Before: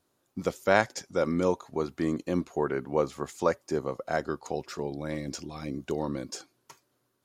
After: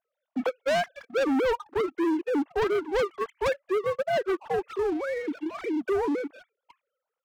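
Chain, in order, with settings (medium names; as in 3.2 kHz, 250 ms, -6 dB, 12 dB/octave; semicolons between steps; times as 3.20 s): formants replaced by sine waves; waveshaping leveller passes 2; saturation -24.5 dBFS, distortion -10 dB; trim +2.5 dB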